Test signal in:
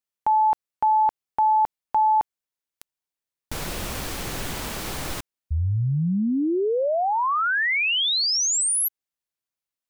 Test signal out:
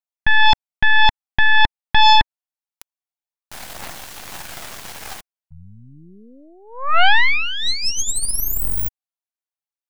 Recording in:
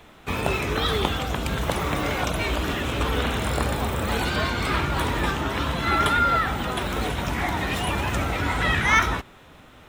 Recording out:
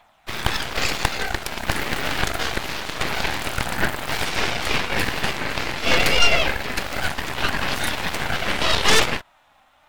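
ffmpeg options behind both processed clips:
-af "lowshelf=f=540:t=q:w=3:g=-10,aphaser=in_gain=1:out_gain=1:delay=3.8:decay=0.32:speed=0.26:type=triangular,aeval=exprs='0.708*(cos(1*acos(clip(val(0)/0.708,-1,1)))-cos(1*PI/2))+0.158*(cos(7*acos(clip(val(0)/0.708,-1,1)))-cos(7*PI/2))+0.355*(cos(8*acos(clip(val(0)/0.708,-1,1)))-cos(8*PI/2))':c=same,volume=-4dB"

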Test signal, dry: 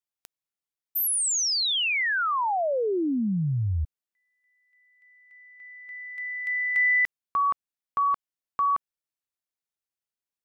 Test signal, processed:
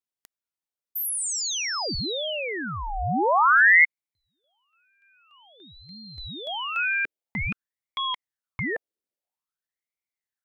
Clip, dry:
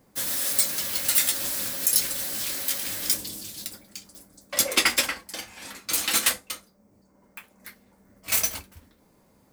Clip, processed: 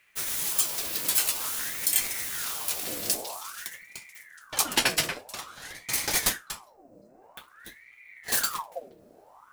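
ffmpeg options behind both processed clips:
-af "asubboost=boost=6.5:cutoff=200,aeval=exprs='val(0)*sin(2*PI*1300*n/s+1300*0.7/0.5*sin(2*PI*0.5*n/s))':c=same"

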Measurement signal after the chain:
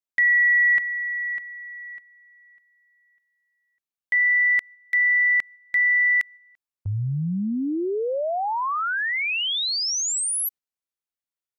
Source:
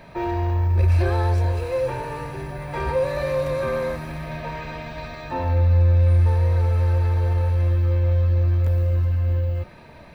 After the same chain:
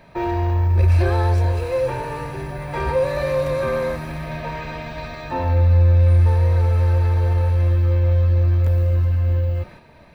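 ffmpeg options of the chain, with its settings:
-af "agate=range=-6dB:threshold=-42dB:ratio=16:detection=peak,volume=2.5dB"

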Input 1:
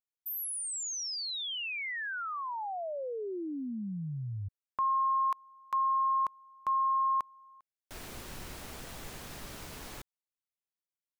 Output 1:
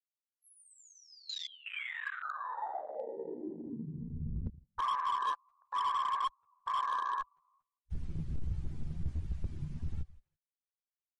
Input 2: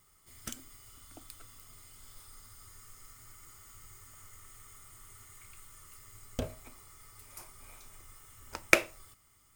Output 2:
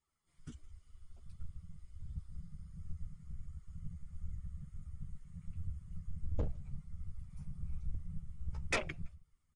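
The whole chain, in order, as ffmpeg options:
-filter_complex "[0:a]asplit=2[a][b];[b]aecho=0:1:165|330:0.126|0.0277[c];[a][c]amix=inputs=2:normalize=0,asubboost=boost=10.5:cutoff=60,afftfilt=real='hypot(re,im)*cos(2*PI*random(0))':imag='hypot(re,im)*sin(2*PI*random(1))':win_size=512:overlap=0.75,highshelf=f=7.3k:g=-10,asplit=2[d][e];[e]adelay=13,volume=-3dB[f];[d][f]amix=inputs=2:normalize=0,flanger=delay=2.2:depth=3.7:regen=36:speed=1.4:shape=sinusoidal,afwtdn=0.00708,asoftclip=type=hard:threshold=-35dB,volume=7dB" -ar 48000 -c:a libmp3lame -b:a 48k

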